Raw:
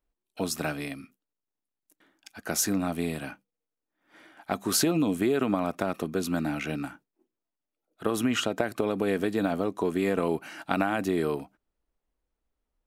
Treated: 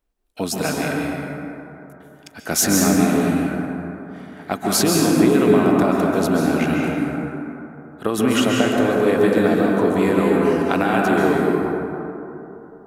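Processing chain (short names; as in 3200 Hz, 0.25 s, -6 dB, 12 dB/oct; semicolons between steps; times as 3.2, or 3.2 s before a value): 2.51–2.95 sample leveller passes 1; plate-style reverb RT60 3.2 s, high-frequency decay 0.35×, pre-delay 0.12 s, DRR -2.5 dB; gain +5.5 dB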